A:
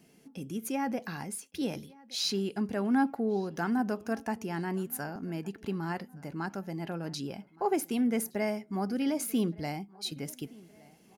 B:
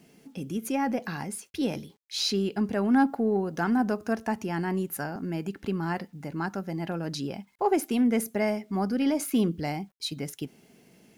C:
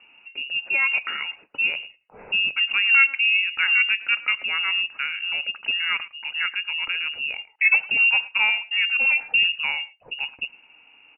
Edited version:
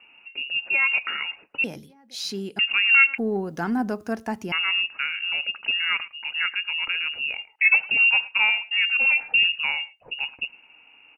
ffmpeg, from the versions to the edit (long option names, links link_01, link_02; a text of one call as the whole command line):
ffmpeg -i take0.wav -i take1.wav -i take2.wav -filter_complex "[2:a]asplit=3[link_01][link_02][link_03];[link_01]atrim=end=1.642[link_04];[0:a]atrim=start=1.638:end=2.592[link_05];[link_02]atrim=start=2.588:end=3.182[link_06];[1:a]atrim=start=3.178:end=4.522[link_07];[link_03]atrim=start=4.518[link_08];[link_04][link_05]acrossfade=duration=0.004:curve1=hsin:curve2=hsin[link_09];[link_09][link_06]acrossfade=duration=0.004:curve1=hsin:curve2=hsin[link_10];[link_10][link_07]acrossfade=duration=0.004:curve1=hsin:curve2=hsin[link_11];[link_11][link_08]acrossfade=duration=0.004:curve1=hsin:curve2=hsin" out.wav